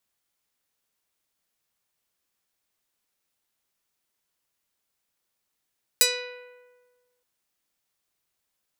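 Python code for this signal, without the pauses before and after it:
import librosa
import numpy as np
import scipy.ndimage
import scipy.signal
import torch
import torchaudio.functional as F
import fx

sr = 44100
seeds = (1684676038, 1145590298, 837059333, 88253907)

y = fx.pluck(sr, length_s=1.22, note=71, decay_s=1.47, pick=0.46, brightness='medium')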